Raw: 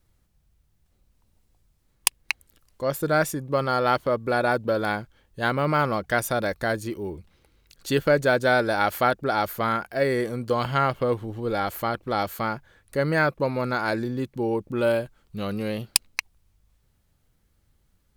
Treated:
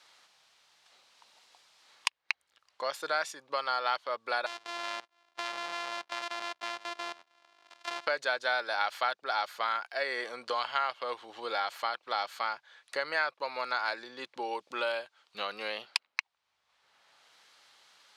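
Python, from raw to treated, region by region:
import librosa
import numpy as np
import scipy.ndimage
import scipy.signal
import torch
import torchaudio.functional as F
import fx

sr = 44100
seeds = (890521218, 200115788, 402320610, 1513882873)

y = fx.chain(x, sr, fx.sample_sort(block=128),
    fx.level_steps(step_db=17), at=(4.46, 8.07))
y = scipy.signal.sosfilt(scipy.signal.cheby1(2, 1.0, [830.0, 4200.0], 'bandpass', fs=sr, output='sos'), y)
y = fx.high_shelf(y, sr, hz=3600.0, db=10.5)
y = fx.band_squash(y, sr, depth_pct=70)
y = F.gain(torch.from_numpy(y), -5.5).numpy()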